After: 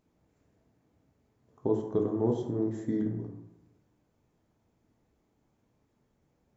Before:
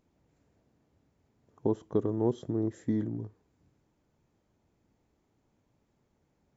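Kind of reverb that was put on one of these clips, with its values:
dense smooth reverb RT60 0.91 s, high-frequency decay 0.45×, DRR 1.5 dB
level −2 dB

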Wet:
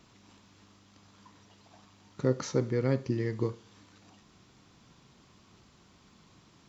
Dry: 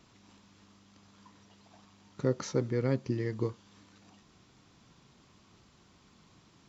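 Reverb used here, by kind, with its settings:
four-comb reverb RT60 0.41 s, combs from 31 ms, DRR 15.5 dB
level +1.5 dB

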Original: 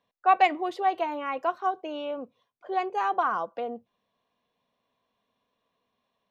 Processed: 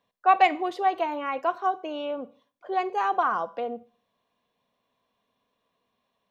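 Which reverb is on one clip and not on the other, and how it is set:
four-comb reverb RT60 0.44 s, combs from 31 ms, DRR 17 dB
level +1.5 dB

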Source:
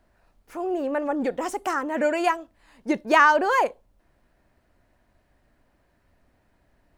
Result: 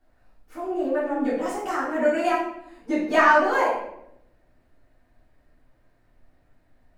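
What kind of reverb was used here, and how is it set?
rectangular room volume 200 cubic metres, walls mixed, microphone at 3.4 metres
level −11.5 dB

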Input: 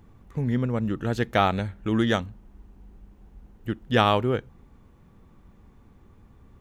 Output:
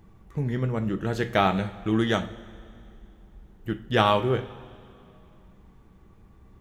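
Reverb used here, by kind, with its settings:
coupled-rooms reverb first 0.34 s, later 2.6 s, from −18 dB, DRR 6.5 dB
level −1 dB

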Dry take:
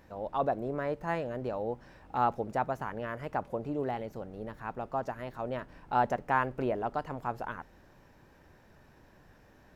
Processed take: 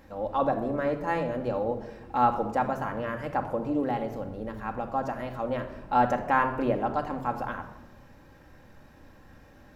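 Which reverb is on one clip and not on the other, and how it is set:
rectangular room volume 3,600 cubic metres, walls furnished, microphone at 2.2 metres
level +3 dB

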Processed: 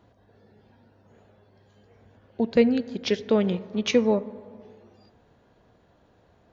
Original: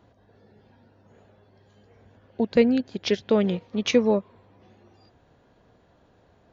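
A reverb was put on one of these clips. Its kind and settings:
dense smooth reverb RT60 1.9 s, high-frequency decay 0.3×, DRR 15.5 dB
level −1 dB

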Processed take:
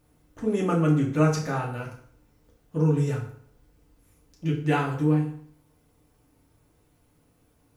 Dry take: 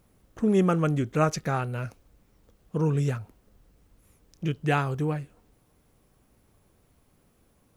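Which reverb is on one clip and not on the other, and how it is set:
feedback delay network reverb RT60 0.58 s, low-frequency decay 1×, high-frequency decay 0.8×, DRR −2.5 dB
level −4.5 dB

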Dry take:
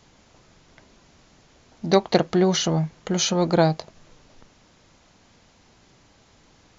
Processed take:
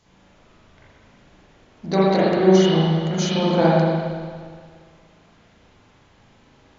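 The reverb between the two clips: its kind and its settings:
spring reverb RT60 1.8 s, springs 37/58 ms, chirp 65 ms, DRR −9 dB
level −6.5 dB

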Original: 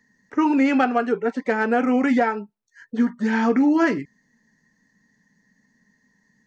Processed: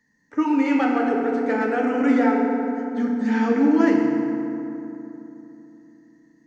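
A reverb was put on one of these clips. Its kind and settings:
feedback delay network reverb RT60 3.1 s, low-frequency decay 1.25×, high-frequency decay 0.5×, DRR −1 dB
level −5 dB

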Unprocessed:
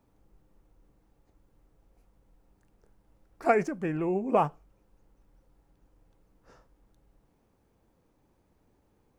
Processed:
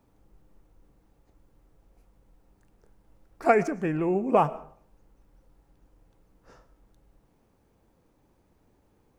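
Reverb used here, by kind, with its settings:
comb and all-pass reverb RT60 0.54 s, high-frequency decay 0.65×, pre-delay 75 ms, DRR 18.5 dB
level +3 dB

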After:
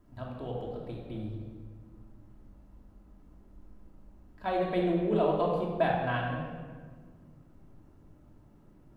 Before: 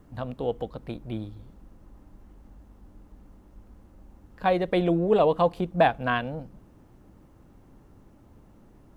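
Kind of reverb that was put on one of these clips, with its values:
rectangular room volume 1,800 cubic metres, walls mixed, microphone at 2.9 metres
level −11 dB

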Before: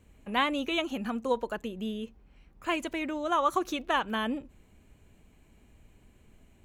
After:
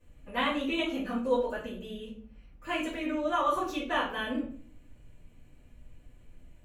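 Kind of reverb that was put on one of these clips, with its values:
rectangular room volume 45 cubic metres, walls mixed, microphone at 2.5 metres
level −13.5 dB

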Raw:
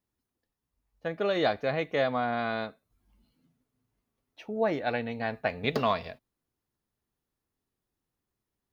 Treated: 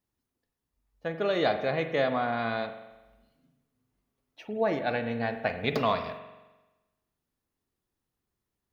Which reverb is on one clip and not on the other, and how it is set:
spring reverb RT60 1.1 s, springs 43 ms, chirp 65 ms, DRR 8 dB

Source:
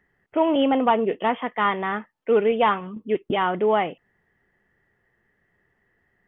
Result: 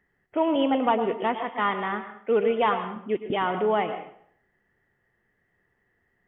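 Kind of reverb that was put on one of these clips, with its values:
dense smooth reverb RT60 0.61 s, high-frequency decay 0.85×, pre-delay 95 ms, DRR 8.5 dB
level −3.5 dB

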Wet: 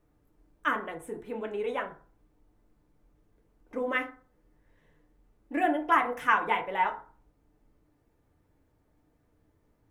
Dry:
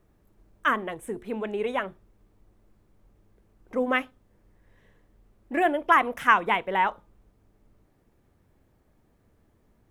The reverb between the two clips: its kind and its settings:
feedback delay network reverb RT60 0.42 s, low-frequency decay 0.85×, high-frequency decay 0.45×, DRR 2 dB
level −6.5 dB

